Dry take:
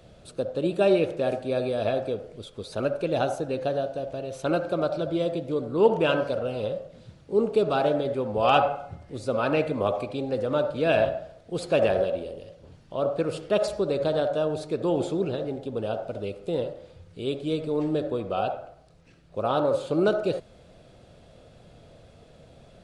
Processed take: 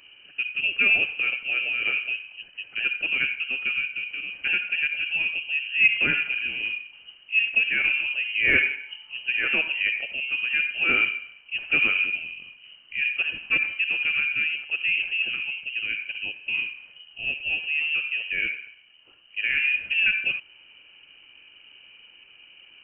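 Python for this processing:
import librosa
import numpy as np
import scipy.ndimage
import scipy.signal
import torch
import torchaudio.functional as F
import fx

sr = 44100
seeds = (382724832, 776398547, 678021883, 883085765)

y = fx.freq_invert(x, sr, carrier_hz=3000)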